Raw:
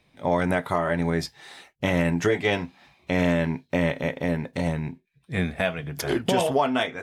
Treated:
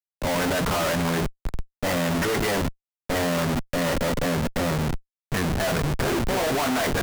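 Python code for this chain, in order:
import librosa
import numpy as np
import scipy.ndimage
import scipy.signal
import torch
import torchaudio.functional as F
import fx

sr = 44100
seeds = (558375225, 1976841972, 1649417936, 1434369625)

p1 = fx.cvsd(x, sr, bps=64000)
p2 = scipy.signal.sosfilt(scipy.signal.butter(4, 2100.0, 'lowpass', fs=sr, output='sos'), p1)
p3 = fx.hum_notches(p2, sr, base_hz=60, count=7)
p4 = p3 + 10.0 ** (-52.0 / 20.0) * np.sin(2.0 * np.pi * 1400.0 * np.arange(len(p3)) / sr)
p5 = fx.tilt_shelf(p4, sr, db=-3.5, hz=770.0)
p6 = fx.over_compress(p5, sr, threshold_db=-26.0, ratio=-1.0)
p7 = p5 + F.gain(torch.from_numpy(p6), 0.0).numpy()
p8 = fx.dynamic_eq(p7, sr, hz=110.0, q=0.78, threshold_db=-35.0, ratio=4.0, max_db=-3)
p9 = fx.schmitt(p8, sr, flips_db=-30.0)
y = fx.band_widen(p9, sr, depth_pct=40)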